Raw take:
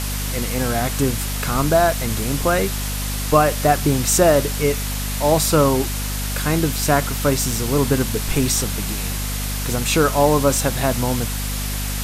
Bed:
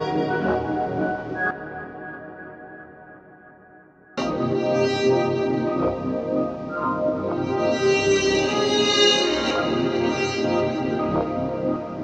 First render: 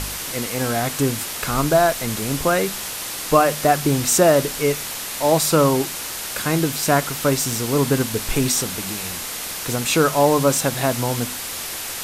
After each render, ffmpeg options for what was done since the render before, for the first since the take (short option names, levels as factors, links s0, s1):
-af "bandreject=f=50:t=h:w=4,bandreject=f=100:t=h:w=4,bandreject=f=150:t=h:w=4,bandreject=f=200:t=h:w=4,bandreject=f=250:t=h:w=4"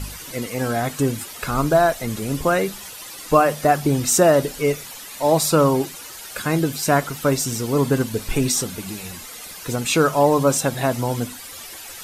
-af "afftdn=nr=12:nf=-30"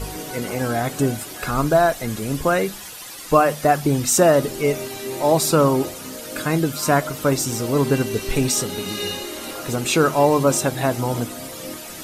-filter_complex "[1:a]volume=0.282[s0];[0:a][s0]amix=inputs=2:normalize=0"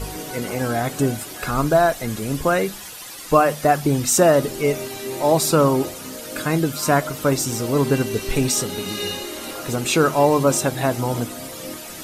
-af anull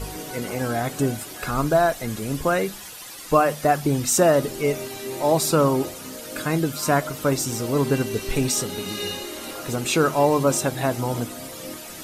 -af "volume=0.75"